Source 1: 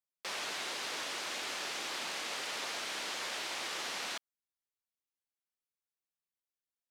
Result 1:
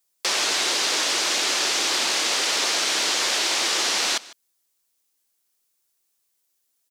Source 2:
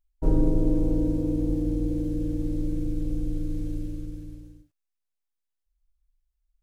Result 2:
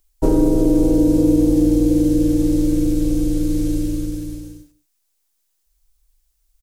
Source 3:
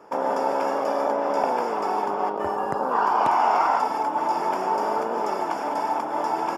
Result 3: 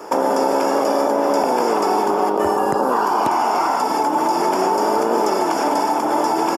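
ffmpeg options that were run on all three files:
-filter_complex "[0:a]bass=f=250:g=-5,treble=f=4k:g=10,asplit=2[a][b];[b]alimiter=limit=-19.5dB:level=0:latency=1,volume=-1dB[c];[a][c]amix=inputs=2:normalize=0,acrossover=split=320|7700[d][e][f];[d]acompressor=threshold=-24dB:ratio=4[g];[e]acompressor=threshold=-26dB:ratio=4[h];[f]acompressor=threshold=-49dB:ratio=4[i];[g][h][i]amix=inputs=3:normalize=0,equalizer=f=340:t=o:w=0.67:g=4.5,aecho=1:1:151:0.0944,volume=8dB"

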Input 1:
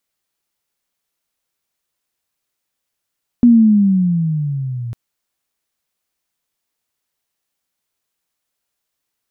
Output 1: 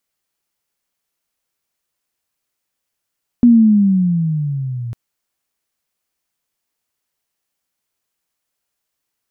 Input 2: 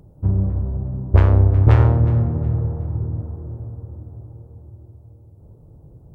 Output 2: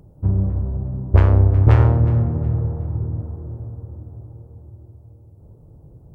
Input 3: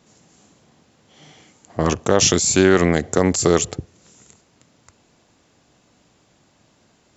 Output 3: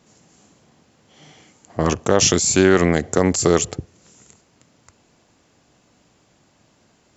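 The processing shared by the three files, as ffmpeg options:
-af "equalizer=f=3.7k:w=5.7:g=-2.5"

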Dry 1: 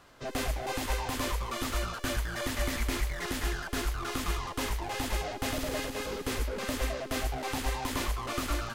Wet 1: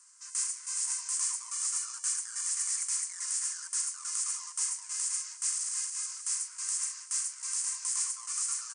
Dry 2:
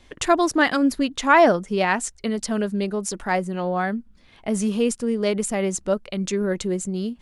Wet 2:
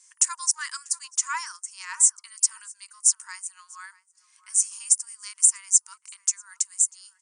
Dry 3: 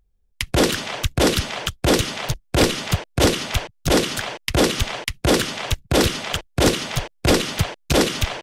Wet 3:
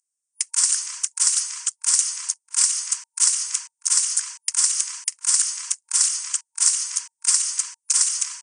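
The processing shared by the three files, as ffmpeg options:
-filter_complex "[0:a]asplit=2[a][b];[b]adelay=641.4,volume=-18dB,highshelf=f=4k:g=-14.4[c];[a][c]amix=inputs=2:normalize=0,aexciter=amount=14:drive=9.2:freq=5.7k,afftfilt=real='re*between(b*sr/4096,920,9700)':imag='im*between(b*sr/4096,920,9700)':win_size=4096:overlap=0.75,volume=-13dB"

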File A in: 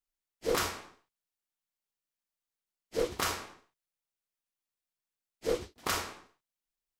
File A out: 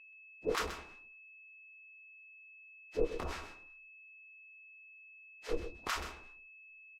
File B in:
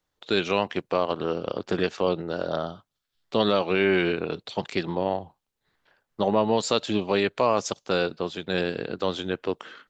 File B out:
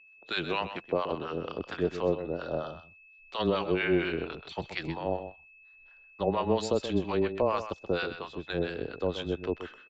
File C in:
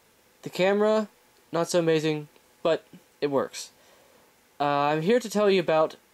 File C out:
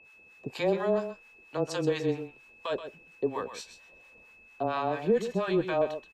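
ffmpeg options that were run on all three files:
-filter_complex "[0:a]afreqshift=-15,asubboost=boost=4.5:cutoff=62,acrossover=split=790[a][b];[a]aeval=exprs='val(0)*(1-1/2+1/2*cos(2*PI*4.3*n/s))':c=same[c];[b]aeval=exprs='val(0)*(1-1/2-1/2*cos(2*PI*4.3*n/s))':c=same[d];[c][d]amix=inputs=2:normalize=0,aeval=exprs='val(0)+0.00251*sin(2*PI*2600*n/s)':c=same,aemphasis=mode=reproduction:type=50kf,asplit=2[e][f];[f]aecho=0:1:128:0.299[g];[e][g]amix=inputs=2:normalize=0"

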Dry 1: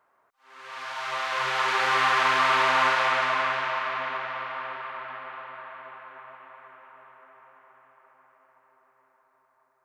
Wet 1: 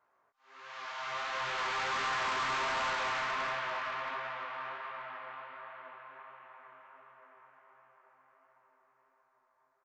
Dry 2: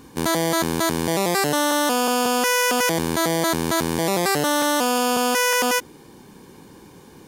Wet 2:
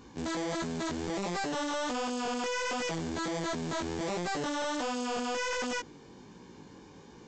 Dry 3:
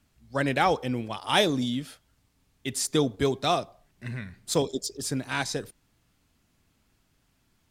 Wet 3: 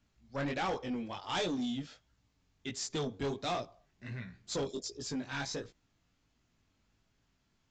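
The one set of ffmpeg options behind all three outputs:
-af "flanger=delay=16.5:depth=5.5:speed=1.4,aresample=16000,asoftclip=type=tanh:threshold=-26.5dB,aresample=44100,volume=-3dB"

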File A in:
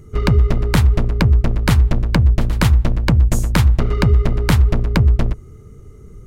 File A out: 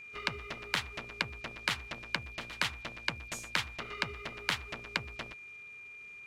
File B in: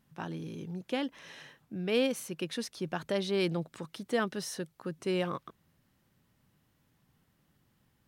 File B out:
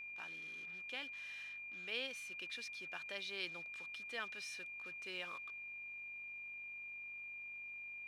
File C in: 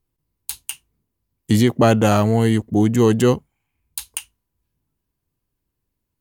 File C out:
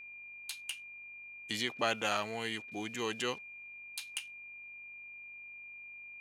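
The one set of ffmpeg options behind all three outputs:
-af "aeval=exprs='val(0)+0.00501*(sin(2*PI*50*n/s)+sin(2*PI*2*50*n/s)/2+sin(2*PI*3*50*n/s)/3+sin(2*PI*4*50*n/s)/4+sin(2*PI*5*50*n/s)/5)':c=same,acrusher=bits=7:mix=0:aa=0.5,bandpass=f=2.9k:t=q:w=0.93:csg=0,aeval=exprs='val(0)+0.00891*sin(2*PI*2400*n/s)':c=same,volume=-5.5dB"

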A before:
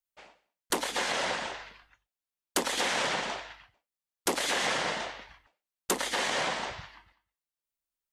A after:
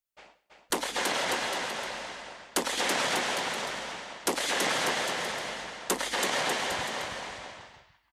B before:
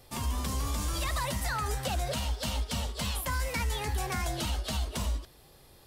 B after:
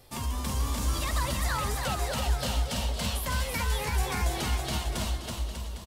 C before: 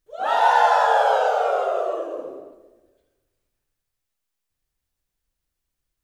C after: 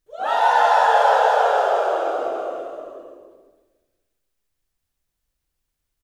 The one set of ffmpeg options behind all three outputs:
-af "aecho=1:1:330|594|805.2|974.2|1109:0.631|0.398|0.251|0.158|0.1"

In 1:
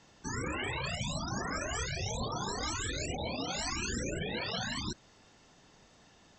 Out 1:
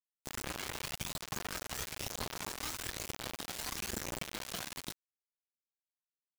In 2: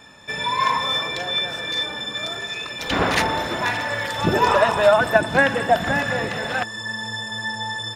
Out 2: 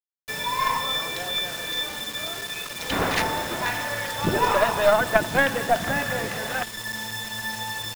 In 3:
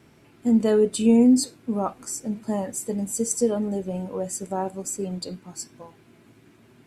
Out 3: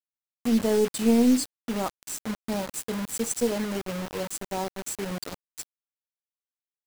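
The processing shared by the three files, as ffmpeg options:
-af "acrusher=bits=4:mix=0:aa=0.000001,aeval=exprs='0.891*(cos(1*acos(clip(val(0)/0.891,-1,1)))-cos(1*PI/2))+0.282*(cos(2*acos(clip(val(0)/0.891,-1,1)))-cos(2*PI/2))':c=same,volume=-4dB"

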